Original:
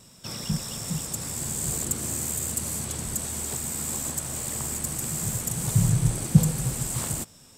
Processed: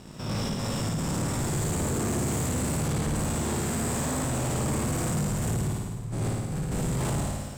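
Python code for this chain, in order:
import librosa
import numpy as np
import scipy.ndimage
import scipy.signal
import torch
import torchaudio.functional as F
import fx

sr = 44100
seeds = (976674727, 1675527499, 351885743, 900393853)

y = fx.spec_steps(x, sr, hold_ms=100)
y = fx.lowpass(y, sr, hz=1300.0, slope=6)
y = fx.over_compress(y, sr, threshold_db=-36.0, ratio=-1.0)
y = fx.doubler(y, sr, ms=20.0, db=-10.5)
y = fx.room_flutter(y, sr, wall_m=9.4, rt60_s=1.2)
y = fx.leveller(y, sr, passes=3)
y = F.gain(torch.from_numpy(y), -3.5).numpy()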